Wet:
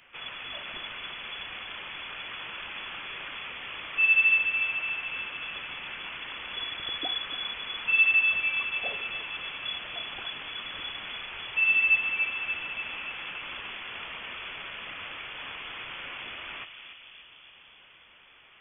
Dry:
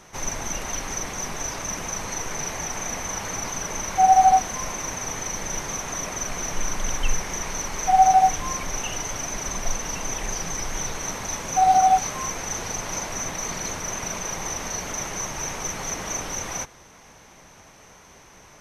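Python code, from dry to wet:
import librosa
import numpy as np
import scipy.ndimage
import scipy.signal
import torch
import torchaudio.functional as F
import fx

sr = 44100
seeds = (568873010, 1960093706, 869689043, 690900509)

y = fx.low_shelf(x, sr, hz=360.0, db=-11.0)
y = fx.vibrato(y, sr, rate_hz=1.1, depth_cents=9.3)
y = fx.echo_filtered(y, sr, ms=290, feedback_pct=75, hz=1100.0, wet_db=-5)
y = fx.freq_invert(y, sr, carrier_hz=3400)
y = y * librosa.db_to_amplitude(-4.5)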